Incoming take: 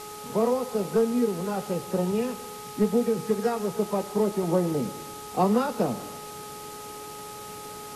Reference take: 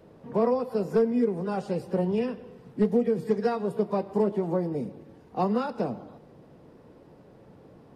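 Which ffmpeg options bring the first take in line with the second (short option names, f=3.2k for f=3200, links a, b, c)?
-af "bandreject=f=420.2:t=h:w=4,bandreject=f=840.4:t=h:w=4,bandreject=f=1.2606k:t=h:w=4,afwtdn=0.0071,asetnsamples=n=441:p=0,asendcmd='4.43 volume volume -3.5dB',volume=0dB"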